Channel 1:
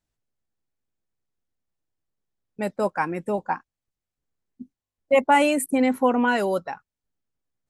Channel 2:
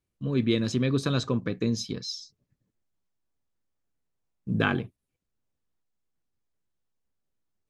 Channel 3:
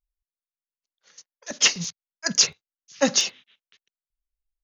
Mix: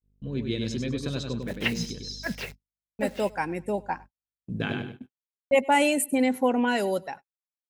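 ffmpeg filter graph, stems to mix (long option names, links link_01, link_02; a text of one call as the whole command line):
ffmpeg -i stem1.wav -i stem2.wav -i stem3.wav -filter_complex "[0:a]adelay=400,volume=-2.5dB,asplit=2[link_01][link_02];[link_02]volume=-23.5dB[link_03];[1:a]volume=-5.5dB,asplit=2[link_04][link_05];[link_05]volume=-5dB[link_06];[2:a]lowpass=frequency=2300:width=0.5412,lowpass=frequency=2300:width=1.3066,acrusher=bits=8:dc=4:mix=0:aa=0.000001,aeval=exprs='val(0)+0.00794*(sin(2*PI*50*n/s)+sin(2*PI*2*50*n/s)/2+sin(2*PI*3*50*n/s)/3+sin(2*PI*4*50*n/s)/4+sin(2*PI*5*50*n/s)/5)':channel_layout=same,volume=-1.5dB,afade=type=out:start_time=2.32:duration=0.74:silence=0.398107[link_07];[link_03][link_06]amix=inputs=2:normalize=0,aecho=0:1:99|198|297|396:1|0.28|0.0784|0.022[link_08];[link_01][link_04][link_07][link_08]amix=inputs=4:normalize=0,equalizer=frequency=1200:width_type=o:width=0.43:gain=-10,agate=range=-55dB:threshold=-41dB:ratio=16:detection=peak,adynamicequalizer=threshold=0.0126:dfrequency=2200:dqfactor=0.7:tfrequency=2200:tqfactor=0.7:attack=5:release=100:ratio=0.375:range=2:mode=boostabove:tftype=highshelf" out.wav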